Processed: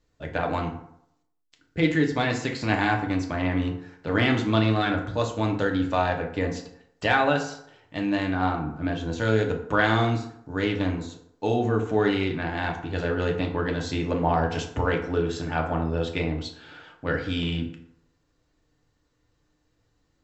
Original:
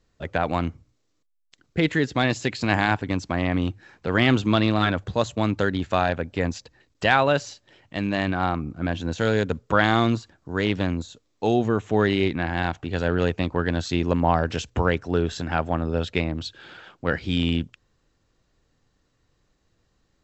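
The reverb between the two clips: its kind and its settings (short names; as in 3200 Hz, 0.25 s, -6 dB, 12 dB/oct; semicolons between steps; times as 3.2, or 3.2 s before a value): FDN reverb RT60 0.73 s, low-frequency decay 0.85×, high-frequency decay 0.55×, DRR 1 dB; gain -4.5 dB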